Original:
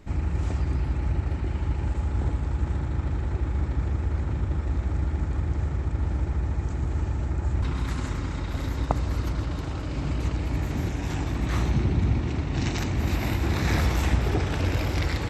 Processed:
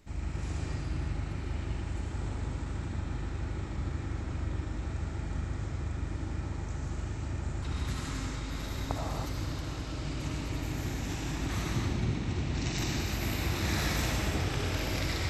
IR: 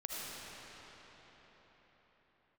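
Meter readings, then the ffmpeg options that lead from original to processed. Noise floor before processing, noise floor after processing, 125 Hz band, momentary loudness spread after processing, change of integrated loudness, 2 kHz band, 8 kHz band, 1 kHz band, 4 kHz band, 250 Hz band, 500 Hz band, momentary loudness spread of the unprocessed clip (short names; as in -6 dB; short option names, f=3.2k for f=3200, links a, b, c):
-31 dBFS, -38 dBFS, -8.0 dB, 6 LU, -7.0 dB, -3.0 dB, +2.0 dB, -5.5 dB, +0.5 dB, -6.0 dB, -6.0 dB, 5 LU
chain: -filter_complex "[0:a]highshelf=f=2.9k:g=10.5[a];[1:a]atrim=start_sample=2205,afade=t=out:st=0.39:d=0.01,atrim=end_sample=17640[b];[a][b]afir=irnorm=-1:irlink=0,volume=-6.5dB"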